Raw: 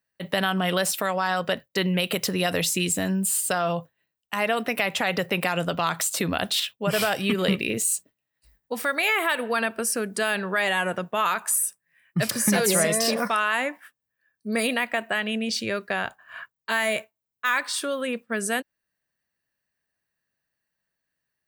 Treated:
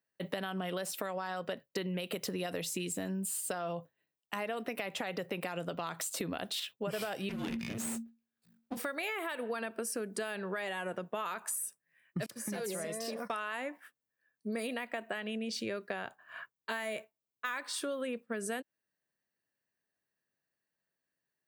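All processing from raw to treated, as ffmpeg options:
ffmpeg -i in.wav -filter_complex "[0:a]asettb=1/sr,asplit=3[link_01][link_02][link_03];[link_01]atrim=end=7.294[link_04];[link_02]atrim=start=7.29:end=8.77,asetpts=PTS-STARTPTS,afade=type=in:duration=0.004:curve=qsin,afade=type=out:start_time=1.476:duration=0.004:curve=qsin,aeval=exprs='max(val(0),0)':channel_layout=same,afreqshift=-230[link_05];[link_03]atrim=start=8.766[link_06];[link_04][link_05]acrossfade=duration=0.004:curve1=hsin:curve2=qsin[link_07];[link_07][link_06]acrossfade=duration=0.004:curve1=qsin:curve2=hsin,asettb=1/sr,asplit=3[link_08][link_09][link_10];[link_08]atrim=end=12.264[link_11];[link_09]atrim=start=12.26:end=13.3,asetpts=PTS-STARTPTS,afade=type=in:duration=0.004:curve=qsin,afade=type=out:start_time=1.036:duration=0.004:curve=qsin,agate=range=-33dB:threshold=-21dB:ratio=3:release=100:detection=peak,acompressor=threshold=-31dB:ratio=3:attack=3.2:release=140:knee=1:detection=peak[link_12];[link_10]atrim=start=13.296[link_13];[link_11][link_12]acrossfade=duration=0.004:curve1=hsin:curve2=qsin[link_14];[link_14][link_13]acrossfade=duration=0.004:curve1=qsin:curve2=hsin,highpass=89,equalizer=frequency=380:width=0.72:gain=6,acompressor=threshold=-26dB:ratio=6,volume=-7.5dB" out.wav

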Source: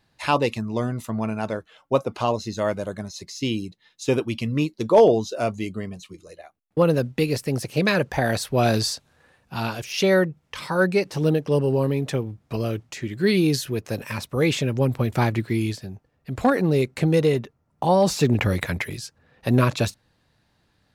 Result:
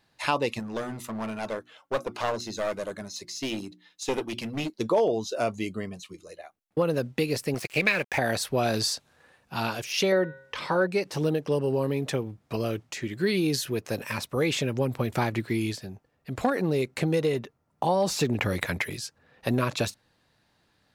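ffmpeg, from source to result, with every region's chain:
ffmpeg -i in.wav -filter_complex "[0:a]asettb=1/sr,asplit=3[link_01][link_02][link_03];[link_01]atrim=end=0.594[link_04];[link_02]atrim=start=0.59:end=4.7,asetpts=PTS-STARTPTS,afade=type=in:duration=0.004:curve=qsin,afade=type=out:start_time=4.106:duration=0.004:curve=qsin,lowshelf=frequency=120:gain=-8.5,bandreject=frequency=60:width_type=h:width=6,bandreject=frequency=120:width_type=h:width=6,bandreject=frequency=180:width_type=h:width=6,bandreject=frequency=240:width_type=h:width=6,bandreject=frequency=300:width_type=h:width=6,bandreject=frequency=360:width_type=h:width=6,aeval=exprs='clip(val(0),-1,0.0376)':channel_layout=same[link_05];[link_03]atrim=start=4.696[link_06];[link_04][link_05]acrossfade=duration=0.004:curve1=hsin:curve2=qsin[link_07];[link_07][link_06]acrossfade=duration=0.004:curve1=qsin:curve2=hsin,asettb=1/sr,asplit=3[link_08][link_09][link_10];[link_08]atrim=end=7.544[link_11];[link_09]atrim=start=7.54:end=8.18,asetpts=PTS-STARTPTS,afade=type=in:duration=0.004:curve=qsin,afade=type=out:start_time=0.636:duration=0.004:curve=qsin,highpass=66,equalizer=frequency=2300:width_type=o:width=0.67:gain=14.5,aeval=exprs='sgn(val(0))*max(abs(val(0))-0.0178,0)':channel_layout=same[link_12];[link_10]atrim=start=8.176[link_13];[link_11][link_12]acrossfade=duration=0.004:curve1=hsin:curve2=qsin[link_14];[link_14][link_13]acrossfade=duration=0.004:curve1=qsin:curve2=hsin,asettb=1/sr,asplit=3[link_15][link_16][link_17];[link_15]atrim=end=10.124[link_18];[link_16]atrim=start=10.12:end=10.87,asetpts=PTS-STARTPTS,afade=type=in:duration=0.004:curve=qsin,afade=type=out:start_time=0.746:duration=0.004:curve=qsin,bandreject=frequency=134.6:width_type=h:width=4,bandreject=frequency=269.2:width_type=h:width=4,bandreject=frequency=403.8:width_type=h:width=4,bandreject=frequency=538.4:width_type=h:width=4,bandreject=frequency=673:width_type=h:width=4,bandreject=frequency=807.6:width_type=h:width=4,bandreject=frequency=942.2:width_type=h:width=4,bandreject=frequency=1076.8:width_type=h:width=4,bandreject=frequency=1211.4:width_type=h:width=4,bandreject=frequency=1346:width_type=h:width=4,bandreject=frequency=1480.6:width_type=h:width=4,bandreject=frequency=1615.2:width_type=h:width=4,bandreject=frequency=1749.8:width_type=h:width=4,bandreject=frequency=1884.4:width_type=h:width=4,bandreject=frequency=2019:width_type=h:width=4,bandreject=frequency=2153.6:width_type=h:width=4,bandreject=frequency=2288.2:width_type=h:width=4,bandreject=frequency=2422.8:width_type=h:width=4,bandreject=frequency=2557.4:width_type=h:width=4,bandreject=frequency=2692:width_type=h:width=4,bandreject=frequency=2826.6:width_type=h:width=4,bandreject=frequency=2961.2:width_type=h:width=4,bandreject=frequency=3095.8:width_type=h:width=4,bandreject=frequency=3230.4:width_type=h:width=4,bandreject=frequency=3365:width_type=h:width=4,bandreject=frequency=3499.6:width_type=h:width=4,bandreject=frequency=3634.2:width_type=h:width=4,bandreject=frequency=3768.8:width_type=h:width=4,bandreject=frequency=3903.4:width_type=h:width=4,bandreject=frequency=4038:width_type=h:width=4,acrossover=split=5400[link_19][link_20];[link_20]acompressor=threshold=-58dB:ratio=4:attack=1:release=60[link_21];[link_19][link_21]amix=inputs=2:normalize=0,equalizer=frequency=470:width=0.69:gain=5[link_22];[link_17]atrim=start=10.866[link_23];[link_18][link_22]acrossfade=duration=0.004:curve1=hsin:curve2=qsin[link_24];[link_24][link_23]acrossfade=duration=0.004:curve1=qsin:curve2=hsin,lowshelf=frequency=170:gain=-8,acompressor=threshold=-22dB:ratio=3" out.wav

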